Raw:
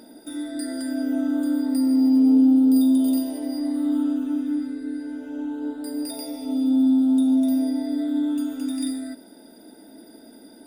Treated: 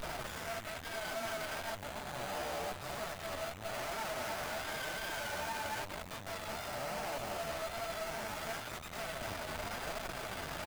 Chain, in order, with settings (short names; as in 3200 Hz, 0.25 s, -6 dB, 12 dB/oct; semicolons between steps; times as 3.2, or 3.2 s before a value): octaver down 2 oct, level +4 dB; brick-wall FIR band-pass 560–6600 Hz; tilt +4 dB/oct; speakerphone echo 0.14 s, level -23 dB; on a send at -19 dB: reverb RT60 3.6 s, pre-delay 20 ms; on the sum: vibrato 2.6 Hz 46 cents; in parallel at -0.5 dB: negative-ratio compressor -44 dBFS, ratio -0.5; on the sum: hum 50 Hz, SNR 22 dB; Schmitt trigger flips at -47 dBFS; flange 1 Hz, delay 4.2 ms, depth 9.3 ms, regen +17%; running maximum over 9 samples; gain +2 dB